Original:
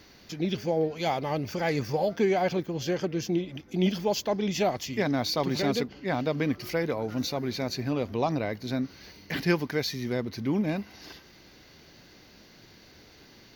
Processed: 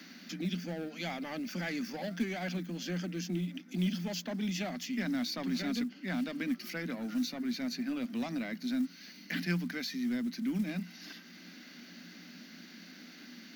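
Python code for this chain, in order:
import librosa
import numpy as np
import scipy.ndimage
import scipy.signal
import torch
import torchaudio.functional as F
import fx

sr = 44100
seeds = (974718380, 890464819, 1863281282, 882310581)

p1 = scipy.signal.sosfilt(scipy.signal.cheby1(6, 9, 170.0, 'highpass', fs=sr, output='sos'), x)
p2 = 10.0 ** (-33.5 / 20.0) * np.tanh(p1 / 10.0 ** (-33.5 / 20.0))
p3 = p1 + (p2 * 10.0 ** (-4.0 / 20.0))
p4 = fx.band_shelf(p3, sr, hz=650.0, db=-16.0, octaves=1.7)
p5 = fx.quant_float(p4, sr, bits=4)
y = fx.band_squash(p5, sr, depth_pct=40)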